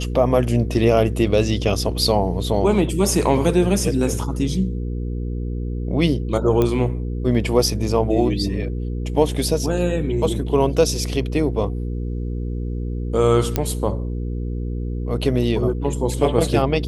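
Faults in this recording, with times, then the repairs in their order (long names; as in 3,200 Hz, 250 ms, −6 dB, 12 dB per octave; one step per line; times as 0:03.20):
mains hum 60 Hz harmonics 8 −25 dBFS
0:06.62: click −8 dBFS
0:13.56: click −5 dBFS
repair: click removal
hum removal 60 Hz, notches 8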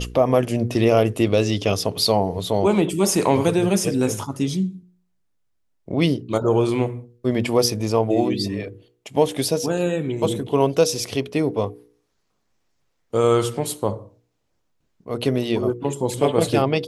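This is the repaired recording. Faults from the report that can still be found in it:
none of them is left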